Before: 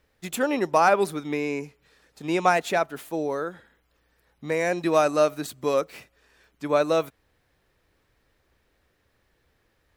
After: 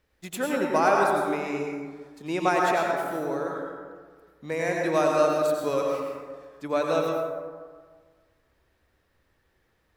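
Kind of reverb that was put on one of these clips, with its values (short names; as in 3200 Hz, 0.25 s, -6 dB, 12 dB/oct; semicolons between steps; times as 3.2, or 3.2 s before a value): plate-style reverb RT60 1.6 s, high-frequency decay 0.4×, pre-delay 80 ms, DRR -1 dB; gain -4.5 dB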